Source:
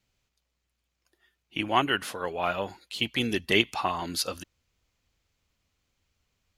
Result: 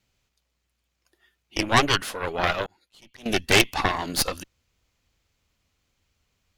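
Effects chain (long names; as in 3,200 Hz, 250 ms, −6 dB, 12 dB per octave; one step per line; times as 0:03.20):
harmonic generator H 5 −20 dB, 8 −8 dB, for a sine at −4.5 dBFS
0:02.66–0:03.26: volume swells 632 ms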